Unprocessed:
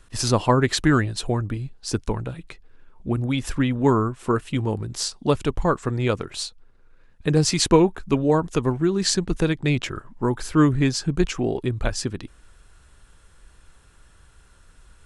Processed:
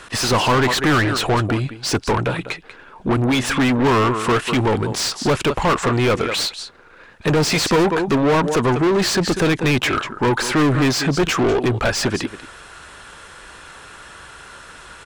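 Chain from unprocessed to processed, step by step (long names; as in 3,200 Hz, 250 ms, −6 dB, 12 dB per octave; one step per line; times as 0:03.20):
single-tap delay 193 ms −19 dB
mid-hump overdrive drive 35 dB, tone 2,900 Hz, clips at −3 dBFS
level −5.5 dB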